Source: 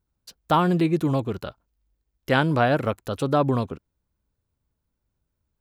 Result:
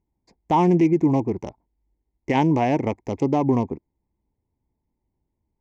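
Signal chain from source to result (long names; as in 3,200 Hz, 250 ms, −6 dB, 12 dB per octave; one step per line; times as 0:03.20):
adaptive Wiener filter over 15 samples
drawn EQ curve 130 Hz 0 dB, 340 Hz +8 dB, 570 Hz −2 dB, 910 Hz +9 dB, 1,400 Hz −20 dB, 2,100 Hz +10 dB, 4,000 Hz −11 dB, 6,000 Hz +11 dB, 9,500 Hz −12 dB
brickwall limiter −10 dBFS, peak gain reduction 7 dB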